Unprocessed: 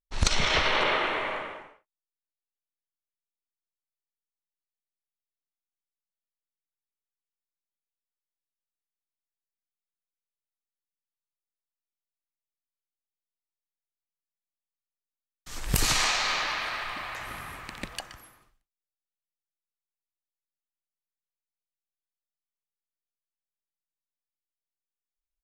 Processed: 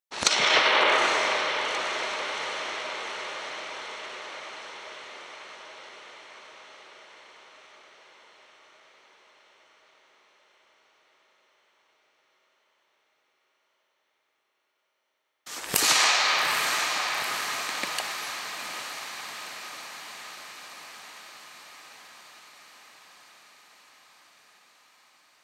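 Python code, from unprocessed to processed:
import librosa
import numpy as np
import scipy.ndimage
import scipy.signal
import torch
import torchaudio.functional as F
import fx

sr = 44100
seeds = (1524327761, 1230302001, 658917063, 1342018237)

p1 = scipy.signal.sosfilt(scipy.signal.butter(2, 360.0, 'highpass', fs=sr, output='sos'), x)
p2 = p1 + fx.echo_diffused(p1, sr, ms=852, feedback_pct=67, wet_db=-8.0, dry=0)
y = F.gain(torch.from_numpy(p2), 4.5).numpy()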